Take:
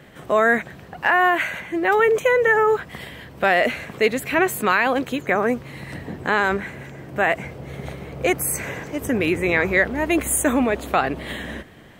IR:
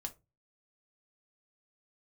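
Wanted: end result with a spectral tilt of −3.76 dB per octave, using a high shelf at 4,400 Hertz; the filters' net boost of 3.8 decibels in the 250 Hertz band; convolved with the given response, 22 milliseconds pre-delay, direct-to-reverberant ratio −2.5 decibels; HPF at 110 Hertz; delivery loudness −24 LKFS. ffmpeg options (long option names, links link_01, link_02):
-filter_complex "[0:a]highpass=110,equalizer=frequency=250:width_type=o:gain=5,highshelf=frequency=4400:gain=5,asplit=2[link_01][link_02];[1:a]atrim=start_sample=2205,adelay=22[link_03];[link_02][link_03]afir=irnorm=-1:irlink=0,volume=4.5dB[link_04];[link_01][link_04]amix=inputs=2:normalize=0,volume=-9dB"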